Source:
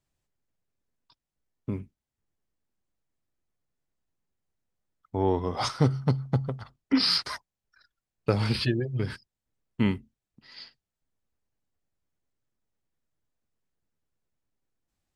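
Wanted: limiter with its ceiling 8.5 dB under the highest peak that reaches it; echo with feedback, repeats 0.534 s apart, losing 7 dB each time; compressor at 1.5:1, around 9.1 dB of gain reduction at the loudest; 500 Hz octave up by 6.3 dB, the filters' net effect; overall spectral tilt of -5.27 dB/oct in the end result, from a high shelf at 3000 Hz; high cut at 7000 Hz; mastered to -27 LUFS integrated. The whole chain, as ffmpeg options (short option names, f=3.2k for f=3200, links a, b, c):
-af "lowpass=7k,equalizer=f=500:t=o:g=8,highshelf=f=3k:g=-5.5,acompressor=threshold=-41dB:ratio=1.5,alimiter=limit=-23dB:level=0:latency=1,aecho=1:1:534|1068|1602|2136|2670:0.447|0.201|0.0905|0.0407|0.0183,volume=10.5dB"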